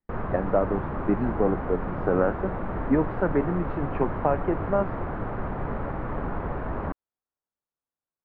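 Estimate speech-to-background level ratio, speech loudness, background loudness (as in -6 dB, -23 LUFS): 4.5 dB, -27.5 LUFS, -32.0 LUFS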